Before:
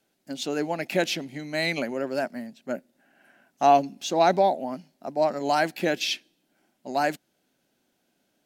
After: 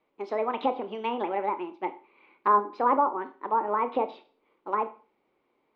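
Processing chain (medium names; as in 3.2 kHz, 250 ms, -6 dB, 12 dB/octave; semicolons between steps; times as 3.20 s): low-pass that closes with the level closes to 660 Hz, closed at -21.5 dBFS; low-pass 1.9 kHz 24 dB/octave; Schroeder reverb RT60 0.56 s, combs from 33 ms, DRR 10 dB; wide varispeed 1.47×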